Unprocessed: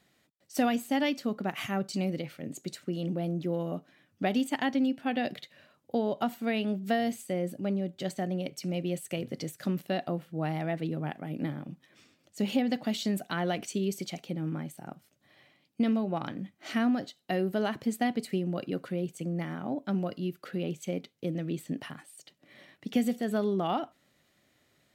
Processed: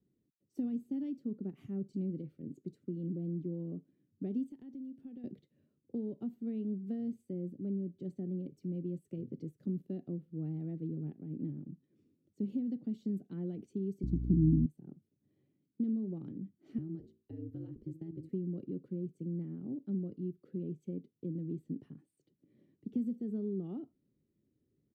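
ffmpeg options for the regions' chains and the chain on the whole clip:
ffmpeg -i in.wav -filter_complex "[0:a]asettb=1/sr,asplit=3[link_01][link_02][link_03];[link_01]atrim=end=4.504[link_04];[link_02]atrim=start=4.5:end=5.24,asetpts=PTS-STARTPTS,afade=type=in:duration=0.004:curve=qsin,afade=type=out:start_time=0.736:duration=0.004:curve=qsin,highshelf=frequency=5300:gain=10.5,acompressor=threshold=-39dB:ratio=4:attack=3.2:release=140:knee=1:detection=peak[link_05];[link_03]atrim=start=5.236[link_06];[link_04][link_05]acrossfade=duration=0.004:curve1=hsin:curve2=qsin[link_07];[link_07][link_06]acrossfade=duration=0.004:curve1=qsin:curve2=hsin,asettb=1/sr,asplit=3[link_08][link_09][link_10];[link_08]atrim=end=14.034[link_11];[link_09]atrim=start=14.03:end=14.66,asetpts=PTS-STARTPTS,afade=type=in:duration=0.004:curve=qsin,afade=type=out:start_time=0.626:duration=0.004:curve=qsin,lowshelf=frequency=410:width_type=q:width=3:gain=11,aeval=exprs='val(0)+0.0316*(sin(2*PI*60*n/s)+sin(2*PI*2*60*n/s)/2+sin(2*PI*3*60*n/s)/3+sin(2*PI*4*60*n/s)/4+sin(2*PI*5*60*n/s)/5)':channel_layout=same,asuperstop=centerf=2600:order=4:qfactor=1.3[link_12];[link_10]atrim=start=14.656[link_13];[link_11][link_12]acrossfade=duration=0.004:curve1=hsin:curve2=qsin[link_14];[link_14][link_13]acrossfade=duration=0.004:curve1=qsin:curve2=hsin,asettb=1/sr,asplit=3[link_15][link_16][link_17];[link_15]atrim=end=16.784[link_18];[link_16]atrim=start=16.78:end=18.29,asetpts=PTS-STARTPTS,afade=type=in:duration=0.004:curve=qsin,afade=type=out:start_time=1.506:duration=0.004:curve=qsin,bandreject=frequency=60:width_type=h:width=6,bandreject=frequency=120:width_type=h:width=6,bandreject=frequency=180:width_type=h:width=6,bandreject=frequency=240:width_type=h:width=6,bandreject=frequency=300:width_type=h:width=6,bandreject=frequency=360:width_type=h:width=6,bandreject=frequency=420:width_type=h:width=6,bandreject=frequency=480:width_type=h:width=6,bandreject=frequency=540:width_type=h:width=6,acrossover=split=370|1000[link_19][link_20][link_21];[link_19]acompressor=threshold=-33dB:ratio=4[link_22];[link_20]acompressor=threshold=-44dB:ratio=4[link_23];[link_21]acompressor=threshold=-42dB:ratio=4[link_24];[link_22][link_23][link_24]amix=inputs=3:normalize=0,aeval=exprs='val(0)*sin(2*PI*80*n/s)':channel_layout=same[link_25];[link_17]atrim=start=18.286[link_26];[link_18][link_25]acrossfade=duration=0.004:curve1=hsin:curve2=qsin[link_27];[link_27][link_26]acrossfade=duration=0.004:curve1=qsin:curve2=hsin,firequalizer=gain_entry='entry(390,0);entry(650,-24);entry(1500,-29)':delay=0.05:min_phase=1,acrossover=split=240|3000[link_28][link_29][link_30];[link_29]acompressor=threshold=-37dB:ratio=2.5[link_31];[link_28][link_31][link_30]amix=inputs=3:normalize=0,volume=-4.5dB" out.wav

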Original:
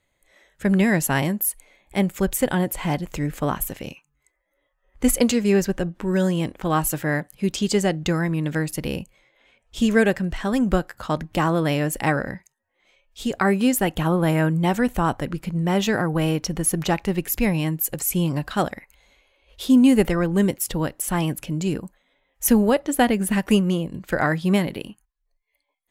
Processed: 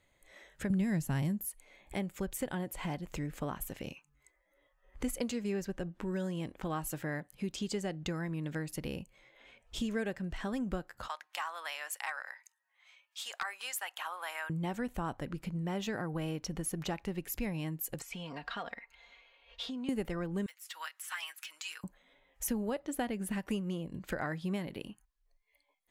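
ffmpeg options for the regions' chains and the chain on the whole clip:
ffmpeg -i in.wav -filter_complex "[0:a]asettb=1/sr,asplit=3[link_01][link_02][link_03];[link_01]atrim=end=0.704[link_04];[link_02]atrim=start=0.7:end=1.46,asetpts=PTS-STARTPTS,afade=type=in:duration=0.004:curve=qsin,afade=type=out:start_time=0.756:duration=0.004:curve=qsin,acrossover=split=2900[link_05][link_06];[link_06]acompressor=threshold=-29dB:ratio=4:attack=1:release=60[link_07];[link_05][link_07]amix=inputs=2:normalize=0,bass=frequency=250:gain=14,treble=frequency=4000:gain=8[link_08];[link_03]atrim=start=1.456[link_09];[link_04][link_08]acrossfade=duration=0.004:curve1=hsin:curve2=qsin[link_10];[link_10][link_09]acrossfade=duration=0.004:curve1=qsin:curve2=hsin,asettb=1/sr,asplit=3[link_11][link_12][link_13];[link_11]atrim=end=11.084[link_14];[link_12]atrim=start=11.08:end=14.5,asetpts=PTS-STARTPTS,afade=type=in:duration=0.004:curve=qsin,afade=type=out:start_time=3.416:duration=0.004:curve=qsin,highpass=frequency=910:width=0.5412,highpass=frequency=910:width=1.3066,aeval=exprs='0.224*(abs(mod(val(0)/0.224+3,4)-2)-1)':channel_layout=same[link_15];[link_13]atrim=start=14.496[link_16];[link_14][link_15]acrossfade=duration=0.004:curve1=hsin:curve2=qsin[link_17];[link_17][link_16]acrossfade=duration=0.004:curve1=qsin:curve2=hsin,asettb=1/sr,asplit=3[link_18][link_19][link_20];[link_18]atrim=end=18.024[link_21];[link_19]atrim=start=18.02:end=19.89,asetpts=PTS-STARTPTS,afade=type=in:duration=0.004:curve=qsin,afade=type=out:start_time=1.866:duration=0.004:curve=qsin,acompressor=threshold=-23dB:ratio=4:attack=3.2:release=140:knee=1:detection=peak,acrossover=split=560 5100:gain=0.2 1 0.0794[link_22][link_23][link_24];[link_22][link_23][link_24]amix=inputs=3:normalize=0,aecho=1:1:4.3:0.63,atrim=end_sample=82467[link_25];[link_20]atrim=start=19.886[link_26];[link_21][link_25]acrossfade=duration=0.004:curve1=hsin:curve2=qsin[link_27];[link_27][link_26]acrossfade=duration=0.004:curve1=qsin:curve2=hsin,asettb=1/sr,asplit=3[link_28][link_29][link_30];[link_28]atrim=end=20.464[link_31];[link_29]atrim=start=20.46:end=21.84,asetpts=PTS-STARTPTS,afade=type=in:duration=0.004:curve=qsin,afade=type=out:start_time=1.376:duration=0.004:curve=qsin,deesser=0.75,highpass=frequency=1300:width=0.5412,highpass=frequency=1300:width=1.3066,aecho=1:1:6.3:0.65,atrim=end_sample=60858[link_32];[link_30]atrim=start=21.836[link_33];[link_31][link_32]acrossfade=duration=0.004:curve1=hsin:curve2=qsin[link_34];[link_34][link_33]acrossfade=duration=0.004:curve1=qsin:curve2=hsin,highshelf=frequency=10000:gain=-4.5,acompressor=threshold=-41dB:ratio=2.5" out.wav

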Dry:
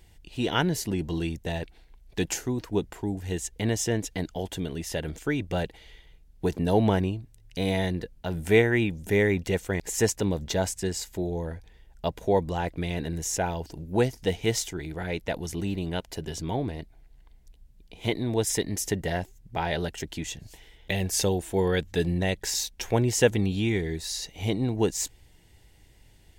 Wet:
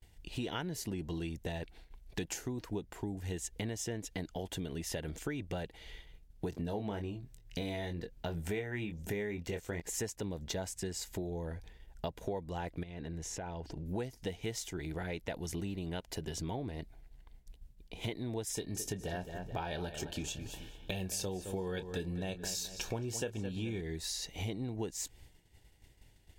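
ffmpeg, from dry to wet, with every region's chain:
ffmpeg -i in.wav -filter_complex "[0:a]asettb=1/sr,asplit=3[link_01][link_02][link_03];[link_01]atrim=end=6.504[link_04];[link_02]atrim=start=6.5:end=9.82,asetpts=PTS-STARTPTS,afade=type=in:duration=0.004:curve=qsin,afade=type=out:start_time=3.316:duration=0.004:curve=qsin,equalizer=frequency=10000:width=4.2:gain=-6.5,asplit=2[link_05][link_06];[link_06]adelay=24,volume=-7dB[link_07];[link_05][link_07]amix=inputs=2:normalize=0,atrim=end_sample=146412[link_08];[link_03]atrim=start=9.816[link_09];[link_04][link_08]acrossfade=duration=0.004:curve1=hsin:curve2=qsin[link_10];[link_10][link_09]acrossfade=duration=0.004:curve1=qsin:curve2=hsin,asettb=1/sr,asplit=3[link_11][link_12][link_13];[link_11]atrim=end=12.834[link_14];[link_12]atrim=start=12.83:end=13.86,asetpts=PTS-STARTPTS,afade=type=in:duration=0.004:curve=qsin,afade=type=out:start_time=1.026:duration=0.004:curve=qsin,aemphasis=mode=reproduction:type=50fm,acompressor=threshold=-39dB:ratio=5:attack=3.2:release=140:knee=1:detection=peak[link_15];[link_13]atrim=start=13.856[link_16];[link_14][link_15]acrossfade=duration=0.004:curve1=hsin:curve2=qsin[link_17];[link_17][link_16]acrossfade=duration=0.004:curve1=qsin:curve2=hsin,asettb=1/sr,asplit=3[link_18][link_19][link_20];[link_18]atrim=end=18.534[link_21];[link_19]atrim=start=18.53:end=23.81,asetpts=PTS-STARTPTS,afade=type=in:duration=0.004:curve=qsin,afade=type=out:start_time=5.276:duration=0.004:curve=qsin,asuperstop=centerf=2000:order=12:qfactor=6.7,asplit=2[link_22][link_23];[link_23]adelay=27,volume=-12.5dB[link_24];[link_22][link_24]amix=inputs=2:normalize=0,atrim=end_sample=232848,asplit=2[link_25][link_26];[link_26]adelay=215,lowpass=frequency=3700:poles=1,volume=-12dB,asplit=2[link_27][link_28];[link_28]adelay=215,lowpass=frequency=3700:poles=1,volume=0.37,asplit=2[link_29][link_30];[link_30]adelay=215,lowpass=frequency=3700:poles=1,volume=0.37,asplit=2[link_31][link_32];[link_32]adelay=215,lowpass=frequency=3700:poles=1,volume=0.37[link_33];[link_25][link_27][link_29][link_31][link_33]amix=inputs=5:normalize=0,atrim=end_sample=232848[link_34];[link_20]atrim=start=23.806[link_35];[link_21][link_34]acrossfade=duration=0.004:curve1=hsin:curve2=qsin[link_36];[link_36][link_35]acrossfade=duration=0.004:curve1=qsin:curve2=hsin,agate=range=-33dB:threshold=-48dB:ratio=3:detection=peak,acompressor=threshold=-37dB:ratio=6,volume=1dB" out.wav

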